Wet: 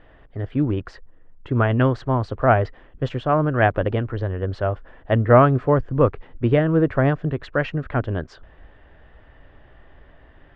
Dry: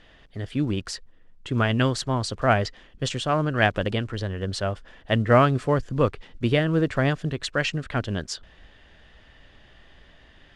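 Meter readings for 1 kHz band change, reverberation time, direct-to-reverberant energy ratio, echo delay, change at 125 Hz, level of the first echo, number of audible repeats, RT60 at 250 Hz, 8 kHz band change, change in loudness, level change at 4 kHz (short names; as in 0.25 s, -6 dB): +4.0 dB, none, none, none, +4.5 dB, none, none, none, under -20 dB, +3.5 dB, -10.5 dB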